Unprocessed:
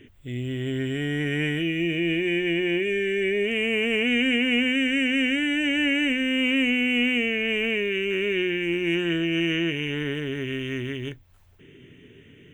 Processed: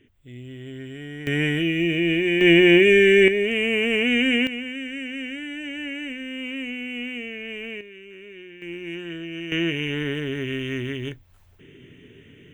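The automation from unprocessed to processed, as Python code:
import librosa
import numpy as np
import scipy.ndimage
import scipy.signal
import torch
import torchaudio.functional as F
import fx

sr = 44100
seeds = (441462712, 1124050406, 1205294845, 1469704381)

y = fx.gain(x, sr, db=fx.steps((0.0, -9.0), (1.27, 3.0), (2.41, 10.5), (3.28, 2.0), (4.47, -9.0), (7.81, -17.5), (8.62, -9.0), (9.52, 1.5)))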